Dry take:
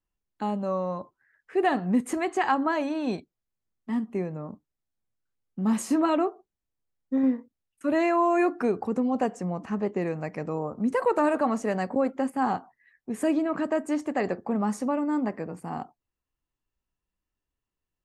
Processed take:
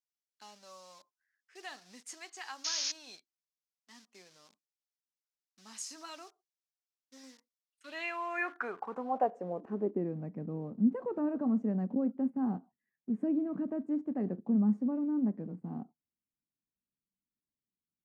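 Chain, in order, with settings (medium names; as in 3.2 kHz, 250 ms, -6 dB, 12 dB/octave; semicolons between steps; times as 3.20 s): painted sound noise, 2.64–2.92 s, 850–6800 Hz -31 dBFS; in parallel at -11.5 dB: word length cut 6-bit, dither none; on the sum: peaking EQ 1.5 kHz +2.5 dB 0.22 oct; band-pass sweep 5.4 kHz -> 210 Hz, 7.58–10.19 s; trim -1 dB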